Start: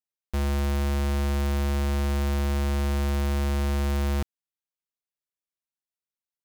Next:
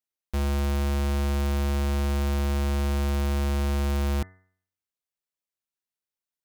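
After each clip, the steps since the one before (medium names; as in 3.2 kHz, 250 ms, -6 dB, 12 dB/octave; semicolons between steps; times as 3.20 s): de-hum 92.98 Hz, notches 22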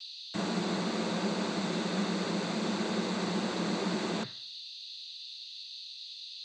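whistle 3.9 kHz -42 dBFS; noise-vocoded speech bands 16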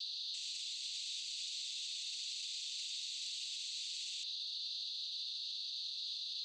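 steep high-pass 2.9 kHz 48 dB/octave; peak limiter -40 dBFS, peak gain reduction 8.5 dB; trim +6 dB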